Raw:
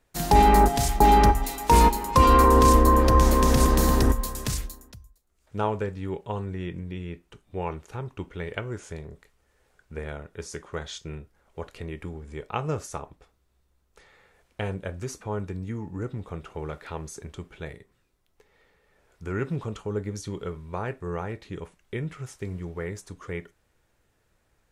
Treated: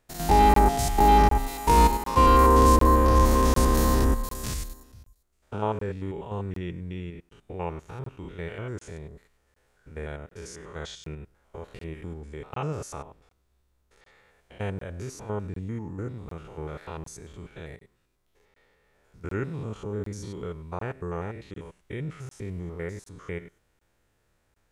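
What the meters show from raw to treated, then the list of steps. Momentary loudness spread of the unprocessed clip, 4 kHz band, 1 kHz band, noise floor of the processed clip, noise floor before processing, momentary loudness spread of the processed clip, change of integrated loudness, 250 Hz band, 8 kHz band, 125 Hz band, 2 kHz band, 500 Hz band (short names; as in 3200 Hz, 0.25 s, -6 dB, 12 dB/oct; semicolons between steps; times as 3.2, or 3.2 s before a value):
22 LU, -2.5 dB, -0.5 dB, -71 dBFS, -70 dBFS, 23 LU, -0.5 dB, -1.5 dB, -2.5 dB, -1.0 dB, -2.0 dB, -1.0 dB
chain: stepped spectrum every 0.1 s; crackling interface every 0.75 s, samples 1024, zero, from 0.54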